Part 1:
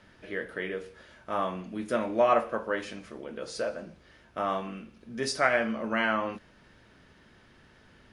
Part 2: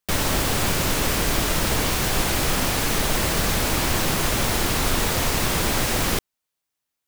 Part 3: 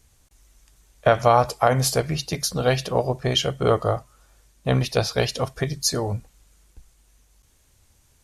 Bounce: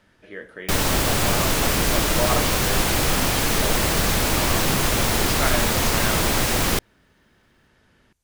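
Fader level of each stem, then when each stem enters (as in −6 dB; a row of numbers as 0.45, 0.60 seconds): −2.5, +1.5, −15.5 decibels; 0.00, 0.60, 0.00 seconds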